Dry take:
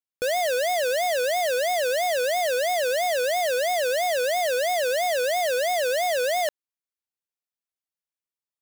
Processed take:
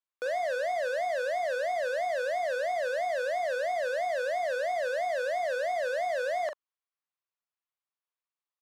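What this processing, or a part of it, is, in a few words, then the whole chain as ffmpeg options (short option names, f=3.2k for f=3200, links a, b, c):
intercom: -filter_complex "[0:a]highpass=500,lowpass=3.7k,equalizer=f=1.1k:t=o:w=0.43:g=7.5,asoftclip=type=tanh:threshold=-25dB,asplit=2[a][b];[b]adelay=41,volume=-8dB[c];[a][c]amix=inputs=2:normalize=0,volume=-1.5dB"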